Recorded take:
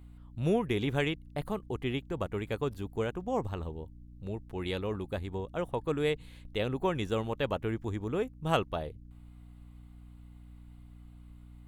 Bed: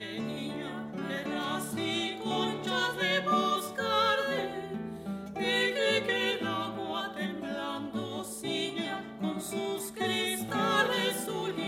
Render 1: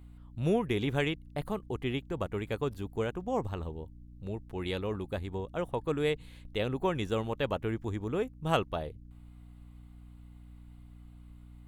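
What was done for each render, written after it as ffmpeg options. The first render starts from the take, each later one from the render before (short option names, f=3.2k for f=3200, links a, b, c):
-af anull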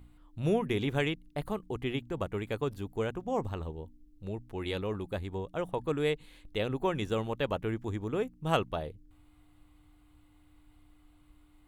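-af "bandreject=f=60:t=h:w=4,bandreject=f=120:t=h:w=4,bandreject=f=180:t=h:w=4,bandreject=f=240:t=h:w=4"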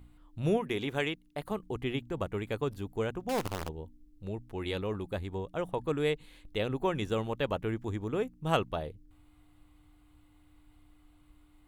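-filter_complex "[0:a]asettb=1/sr,asplit=3[a][b][c];[a]atrim=end=0.574[d];[b]atrim=start=0.57:end=1.51,asetpts=PTS-STARTPTS,afade=t=in:d=0.004:c=qsin,afade=t=out:st=0.936:d=0.004:c=qsin,lowshelf=f=180:g=-10.5[e];[c]atrim=start=1.506[f];[d][e]acrossfade=d=0.004:c1=hsin:c2=qsin[g];[g][f]acrossfade=d=0.004:c1=qsin:c2=hsin,asettb=1/sr,asplit=3[h][i][j];[h]atrim=end=3.294[k];[i]atrim=start=3.29:end=3.69,asetpts=PTS-STARTPTS,afade=t=in:d=0.004:c=qsin,afade=t=out:st=0.396:d=0.004:c=qsin,acrusher=bits=6:dc=4:mix=0:aa=0.000001[l];[j]atrim=start=3.686[m];[k][l]acrossfade=d=0.004:c1=hsin:c2=qsin[n];[n][m]acrossfade=d=0.004:c1=qsin:c2=hsin"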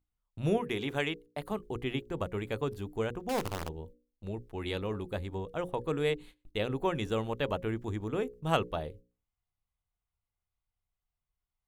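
-af "agate=range=-27dB:threshold=-48dB:ratio=16:detection=peak,bandreject=f=60:t=h:w=6,bandreject=f=120:t=h:w=6,bandreject=f=180:t=h:w=6,bandreject=f=240:t=h:w=6,bandreject=f=300:t=h:w=6,bandreject=f=360:t=h:w=6,bandreject=f=420:t=h:w=6,bandreject=f=480:t=h:w=6,bandreject=f=540:t=h:w=6"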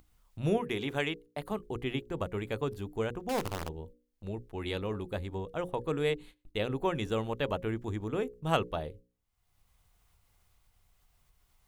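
-af "acompressor=mode=upward:threshold=-49dB:ratio=2.5"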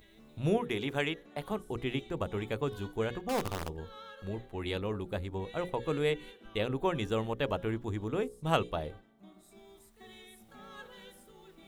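-filter_complex "[1:a]volume=-22.5dB[a];[0:a][a]amix=inputs=2:normalize=0"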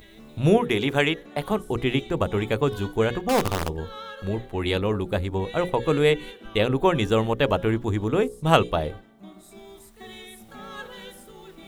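-af "volume=10.5dB"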